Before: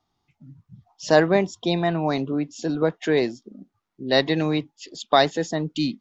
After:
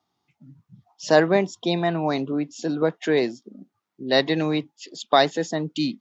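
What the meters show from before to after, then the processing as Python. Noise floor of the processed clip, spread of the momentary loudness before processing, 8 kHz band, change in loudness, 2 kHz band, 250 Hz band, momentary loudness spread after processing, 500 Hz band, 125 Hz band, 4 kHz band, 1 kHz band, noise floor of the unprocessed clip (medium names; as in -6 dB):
-80 dBFS, 13 LU, no reading, 0.0 dB, 0.0 dB, -0.5 dB, 9 LU, 0.0 dB, -2.0 dB, 0.0 dB, 0.0 dB, -79 dBFS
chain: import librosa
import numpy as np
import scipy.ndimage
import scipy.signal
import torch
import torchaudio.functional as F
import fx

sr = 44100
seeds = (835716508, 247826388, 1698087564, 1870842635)

y = scipy.signal.sosfilt(scipy.signal.butter(2, 140.0, 'highpass', fs=sr, output='sos'), x)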